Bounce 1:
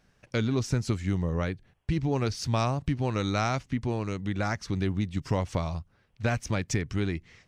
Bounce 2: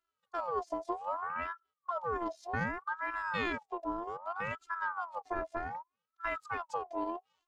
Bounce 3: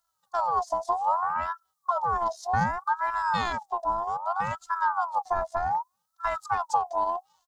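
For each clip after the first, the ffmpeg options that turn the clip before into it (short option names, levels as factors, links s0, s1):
-af "afwtdn=0.0282,afftfilt=real='hypot(re,im)*cos(PI*b)':imag='0':win_size=512:overlap=0.75,aeval=exprs='val(0)*sin(2*PI*1000*n/s+1000*0.35/0.64*sin(2*PI*0.64*n/s))':c=same"
-af "firequalizer=gain_entry='entry(200,0);entry(310,-18);entry(810,8);entry(1200,0);entry(2400,-12);entry(3800,2);entry(5900,7)':delay=0.05:min_phase=1,volume=2.51"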